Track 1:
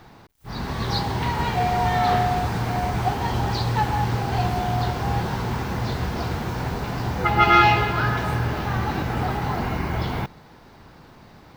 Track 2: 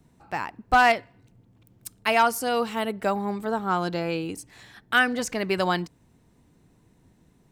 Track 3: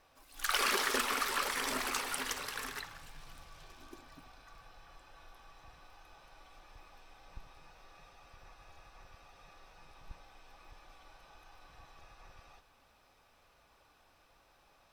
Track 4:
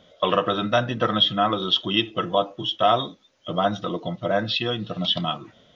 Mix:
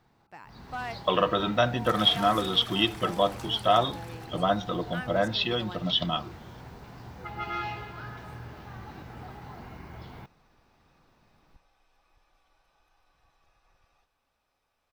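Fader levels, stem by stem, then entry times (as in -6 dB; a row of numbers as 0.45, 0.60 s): -18.5, -18.0, -11.0, -3.0 dB; 0.00, 0.00, 1.45, 0.85 s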